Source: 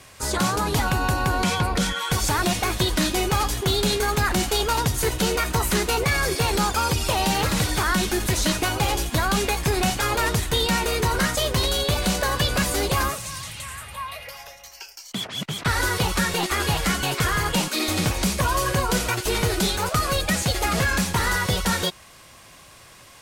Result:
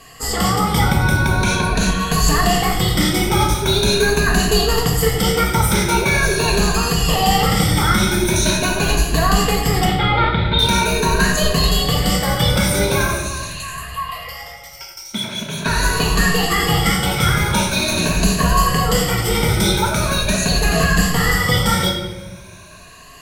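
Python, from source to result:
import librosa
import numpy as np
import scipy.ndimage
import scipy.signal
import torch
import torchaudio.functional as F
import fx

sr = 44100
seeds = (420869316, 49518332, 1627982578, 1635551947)

y = fx.spec_ripple(x, sr, per_octave=1.5, drift_hz=0.43, depth_db=14)
y = fx.steep_lowpass(y, sr, hz=4400.0, slope=96, at=(9.85, 10.59))
y = fx.room_shoebox(y, sr, seeds[0], volume_m3=610.0, walls='mixed', distance_m=1.6)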